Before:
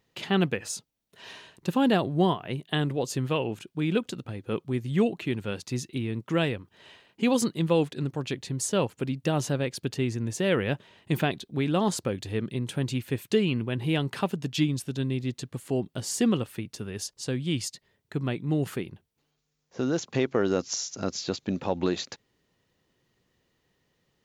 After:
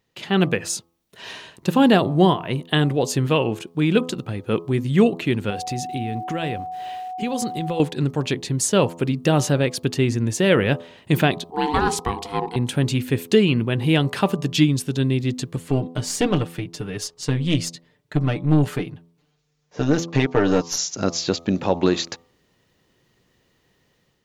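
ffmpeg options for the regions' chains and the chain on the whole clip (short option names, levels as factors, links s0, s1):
-filter_complex "[0:a]asettb=1/sr,asplit=3[s0][s1][s2];[s0]atrim=end=5.504[s3];[s1]atrim=start=5.5:end=7.8,asetpts=PTS-STARTPTS,afade=t=in:d=0.004:c=qsin,afade=t=out:st=2.296:d=0.004:c=qsin,acompressor=threshold=0.0224:ratio=3:attack=3.2:release=140:knee=1:detection=peak,aeval=exprs='val(0)*gte(abs(val(0)),0.00106)':c=same,aeval=exprs='val(0)+0.0141*sin(2*PI*740*n/s)':c=same[s4];[s2]atrim=start=7.796[s5];[s3][s4]acrossfade=d=0.004:c1=hsin:c2=qsin[s6];[s6][s5]acrossfade=d=0.004:c1=qsin:c2=hsin,asettb=1/sr,asplit=3[s7][s8][s9];[s7]atrim=end=11.504[s10];[s8]atrim=start=11.5:end=12.56,asetpts=PTS-STARTPTS,afade=t=in:d=0.004:c=qsin,afade=t=out:st=1.056:d=0.004:c=qsin,bandreject=f=50:t=h:w=6,bandreject=f=100:t=h:w=6,bandreject=f=150:t=h:w=6,bandreject=f=200:t=h:w=6,bandreject=f=250:t=h:w=6,bandreject=f=300:t=h:w=6,bandreject=f=350:t=h:w=6,bandreject=f=400:t=h:w=6,bandreject=f=450:t=h:w=6,aeval=exprs='val(0)*sin(2*PI*600*n/s)':c=same[s11];[s9]atrim=start=12.556[s12];[s10][s11]acrossfade=d=0.004:c1=hsin:c2=qsin[s13];[s13][s12]acrossfade=d=0.004:c1=qsin:c2=hsin,asettb=1/sr,asplit=3[s14][s15][s16];[s14]atrim=end=15.564[s17];[s15]atrim=start=15.56:end=20.78,asetpts=PTS-STARTPTS,afade=t=in:d=0.004:c=qsin,afade=t=out:st=5.216:d=0.004:c=qsin,highshelf=f=8000:g=-8.5,aecho=1:1:6.7:0.83,atrim=end_sample=230202,aeval=exprs='(tanh(7.08*val(0)+0.6)-tanh(0.6))/7.08':c=same[s18];[s16]atrim=start=20.776[s19];[s17][s18]acrossfade=d=0.004:c1=hsin:c2=qsin[s20];[s20][s19]acrossfade=d=0.004:c1=qsin:c2=hsin,bandreject=f=84.13:t=h:w=4,bandreject=f=168.26:t=h:w=4,bandreject=f=252.39:t=h:w=4,bandreject=f=336.52:t=h:w=4,bandreject=f=420.65:t=h:w=4,bandreject=f=504.78:t=h:w=4,bandreject=f=588.91:t=h:w=4,bandreject=f=673.04:t=h:w=4,bandreject=f=757.17:t=h:w=4,bandreject=f=841.3:t=h:w=4,bandreject=f=925.43:t=h:w=4,bandreject=f=1009.56:t=h:w=4,bandreject=f=1093.69:t=h:w=4,bandreject=f=1177.82:t=h:w=4,bandreject=f=1261.95:t=h:w=4,dynaudnorm=f=140:g=5:m=2.66"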